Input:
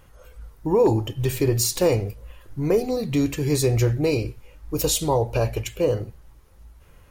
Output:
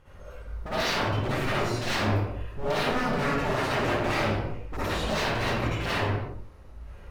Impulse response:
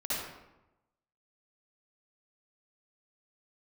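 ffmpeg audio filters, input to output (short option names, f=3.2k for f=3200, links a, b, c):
-filter_complex "[0:a]aemphasis=mode=reproduction:type=50fm,acrossover=split=2800[a][b];[b]acompressor=threshold=-48dB:ratio=4:attack=1:release=60[c];[a][c]amix=inputs=2:normalize=0,aeval=exprs='0.0422*(abs(mod(val(0)/0.0422+3,4)-2)-1)':c=same[d];[1:a]atrim=start_sample=2205,afade=t=out:st=0.44:d=0.01,atrim=end_sample=19845[e];[d][e]afir=irnorm=-1:irlink=0"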